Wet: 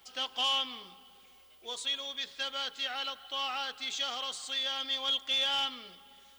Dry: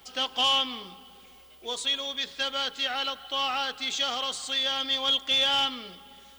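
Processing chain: bass shelf 500 Hz -6 dB; trim -5.5 dB

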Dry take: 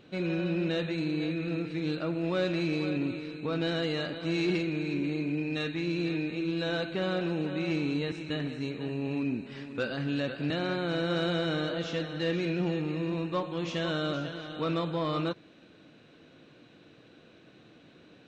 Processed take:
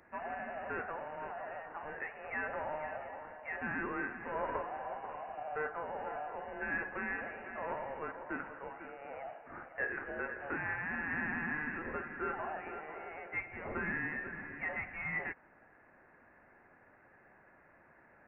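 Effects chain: high-pass 1.2 kHz 24 dB/octave; frequency inversion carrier 3.2 kHz; trim +2.5 dB

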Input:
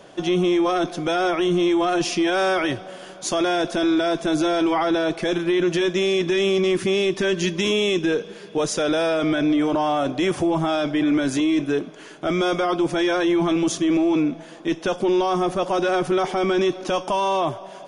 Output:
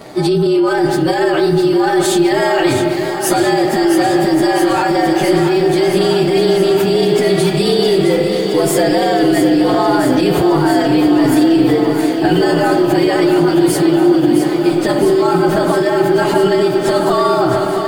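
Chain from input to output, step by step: frequency axis rescaled in octaves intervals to 112%; peaking EQ 230 Hz +4 dB 2.1 oct; spring tank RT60 1.3 s, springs 31/43 ms, chirp 75 ms, DRR 8 dB; loudness maximiser +20 dB; bit-crushed delay 665 ms, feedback 80%, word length 6-bit, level -8 dB; trim -6 dB

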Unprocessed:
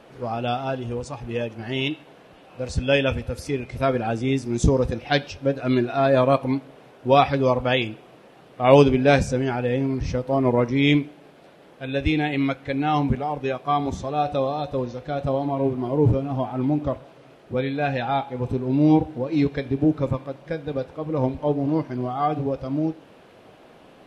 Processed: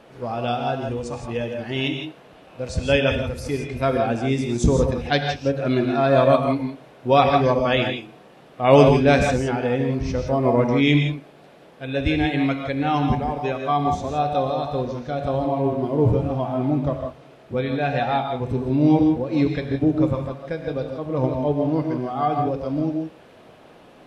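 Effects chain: gated-style reverb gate 190 ms rising, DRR 4 dB

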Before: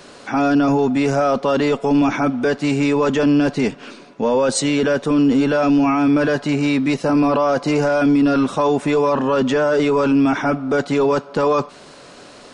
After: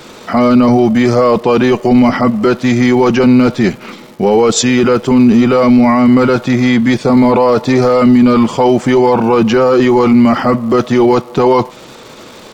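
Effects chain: crackle 430 per s -39 dBFS; pitch shift -2.5 st; trim +7.5 dB

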